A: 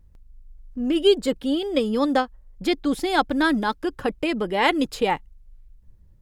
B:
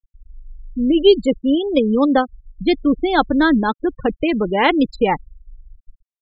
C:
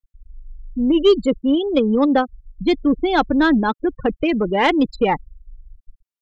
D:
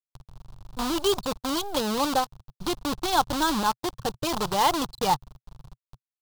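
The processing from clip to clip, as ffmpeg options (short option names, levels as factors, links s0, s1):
-af "afftfilt=real='re*gte(hypot(re,im),0.0631)':imag='im*gte(hypot(re,im),0.0631)':win_size=1024:overlap=0.75,lowshelf=f=330:g=6,volume=1.5"
-af "asoftclip=type=tanh:threshold=0.562"
-af "acrusher=bits=4:dc=4:mix=0:aa=0.000001,acompressor=mode=upward:threshold=0.0141:ratio=2.5,equalizer=f=125:t=o:w=1:g=12,equalizer=f=250:t=o:w=1:g=-10,equalizer=f=500:t=o:w=1:g=-4,equalizer=f=1000:t=o:w=1:g=9,equalizer=f=2000:t=o:w=1:g=-11,equalizer=f=4000:t=o:w=1:g=7,volume=0.447"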